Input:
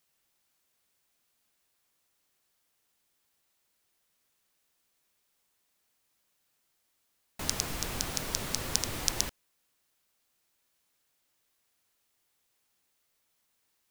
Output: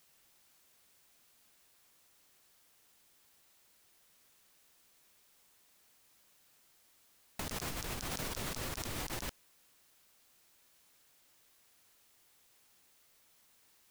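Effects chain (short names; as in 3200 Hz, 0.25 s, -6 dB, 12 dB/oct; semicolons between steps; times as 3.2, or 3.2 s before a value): negative-ratio compressor -42 dBFS, ratio -1; gain +1 dB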